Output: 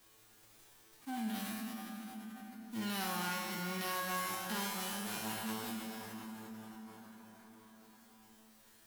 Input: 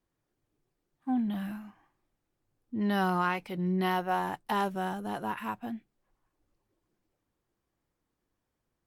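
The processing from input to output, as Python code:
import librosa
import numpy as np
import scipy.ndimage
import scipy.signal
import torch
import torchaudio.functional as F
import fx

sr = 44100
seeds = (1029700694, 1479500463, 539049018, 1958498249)

y = fx.envelope_flatten(x, sr, power=0.3)
y = fx.comb_fb(y, sr, f0_hz=110.0, decay_s=0.72, harmonics='all', damping=0.0, mix_pct=90)
y = fx.rev_plate(y, sr, seeds[0], rt60_s=3.7, hf_ratio=0.75, predelay_ms=0, drr_db=5.0)
y = fx.env_flatten(y, sr, amount_pct=50)
y = y * 10.0 ** (1.0 / 20.0)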